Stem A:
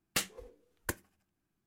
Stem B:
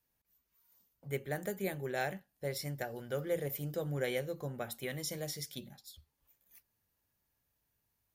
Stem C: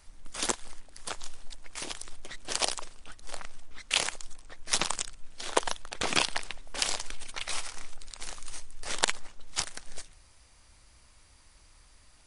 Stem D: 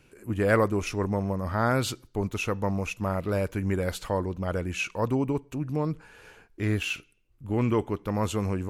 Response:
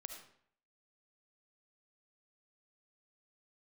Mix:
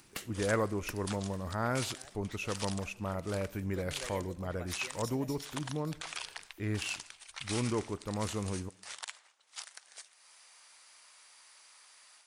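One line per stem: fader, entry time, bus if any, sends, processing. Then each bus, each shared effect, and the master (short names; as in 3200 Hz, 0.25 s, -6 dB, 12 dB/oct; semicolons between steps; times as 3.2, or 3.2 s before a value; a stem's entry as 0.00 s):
0.0 dB, 0.00 s, bus A, send -11 dB, compressor 6:1, threshold -40 dBFS, peak gain reduction 12.5 dB
3.54 s -20 dB -> 3.87 s -8.5 dB, 0.00 s, bus A, send -4 dB, harmonic-percussive split harmonic -7 dB
-14.5 dB, 0.00 s, bus A, send -10.5 dB, AGC gain up to 12 dB; HPF 870 Hz
-9.5 dB, 0.00 s, no bus, send -9 dB, dry
bus A: 0.0 dB, upward compressor, threshold -51 dBFS; limiter -26 dBFS, peak gain reduction 10.5 dB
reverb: on, RT60 0.60 s, pre-delay 30 ms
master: dry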